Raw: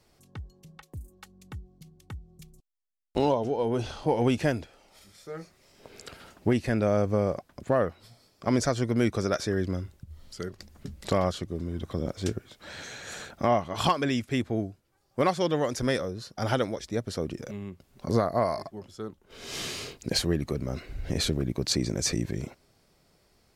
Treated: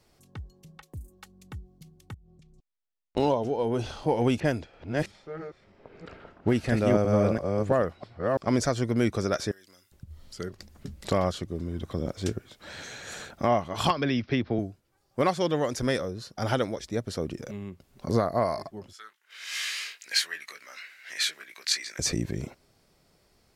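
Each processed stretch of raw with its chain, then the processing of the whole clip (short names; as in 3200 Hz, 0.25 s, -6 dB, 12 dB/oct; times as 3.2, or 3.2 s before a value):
2.14–3.17 compressor, threshold -51 dBFS + air absorption 110 m
4.4–8.51 reverse delay 0.331 s, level -2 dB + low-pass opened by the level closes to 1600 Hz, open at -21.5 dBFS
9.51–9.92 differentiator + compressor 3:1, threshold -51 dBFS
13.9–14.59 steep low-pass 5500 Hz 72 dB/oct + three-band squash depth 100%
18.93–21.99 resonant high-pass 1800 Hz, resonance Q 2.5 + doubler 19 ms -6 dB
whole clip: dry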